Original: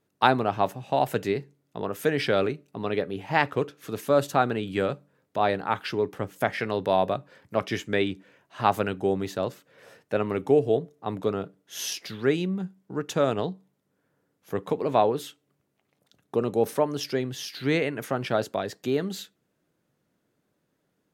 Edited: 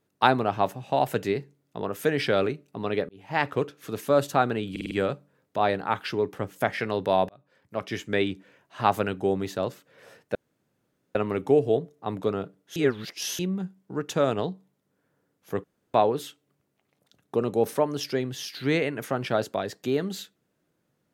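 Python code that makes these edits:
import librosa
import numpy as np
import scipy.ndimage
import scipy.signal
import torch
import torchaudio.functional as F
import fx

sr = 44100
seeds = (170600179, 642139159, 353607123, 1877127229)

y = fx.edit(x, sr, fx.fade_in_span(start_s=3.09, length_s=0.41),
    fx.stutter(start_s=4.71, slice_s=0.05, count=5),
    fx.fade_in_span(start_s=7.09, length_s=0.89),
    fx.insert_room_tone(at_s=10.15, length_s=0.8),
    fx.reverse_span(start_s=11.76, length_s=0.63),
    fx.room_tone_fill(start_s=14.64, length_s=0.3), tone=tone)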